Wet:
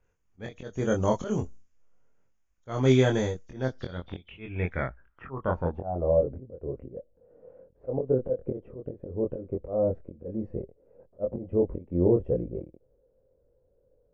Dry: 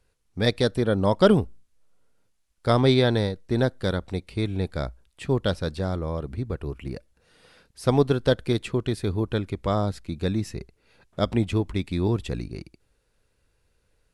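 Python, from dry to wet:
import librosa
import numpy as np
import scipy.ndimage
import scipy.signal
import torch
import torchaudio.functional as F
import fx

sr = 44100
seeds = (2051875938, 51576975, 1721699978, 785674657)

y = fx.freq_compress(x, sr, knee_hz=3000.0, ratio=1.5)
y = fx.peak_eq(y, sr, hz=4000.0, db=-15.0, octaves=0.32)
y = fx.auto_swell(y, sr, attack_ms=267.0)
y = fx.filter_sweep_lowpass(y, sr, from_hz=6700.0, to_hz=530.0, start_s=3.44, end_s=6.23, q=6.7)
y = fx.doubler(y, sr, ms=23.0, db=-3.0)
y = fx.env_lowpass(y, sr, base_hz=2400.0, full_db=-18.5)
y = y * librosa.db_to_amplitude(-4.0)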